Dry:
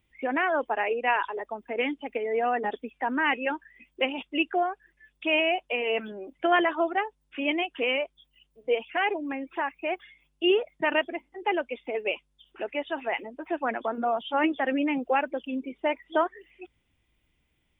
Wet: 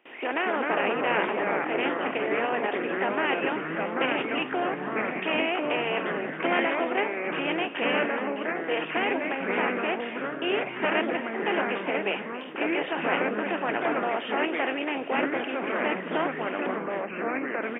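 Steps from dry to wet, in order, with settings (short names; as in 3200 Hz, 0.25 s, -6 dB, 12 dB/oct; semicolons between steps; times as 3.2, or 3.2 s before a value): per-bin compression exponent 0.4; gate with hold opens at -26 dBFS; HPF 220 Hz 6 dB/oct; echoes that change speed 0.189 s, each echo -3 st, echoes 3; echo 0.271 s -14.5 dB; gain -8 dB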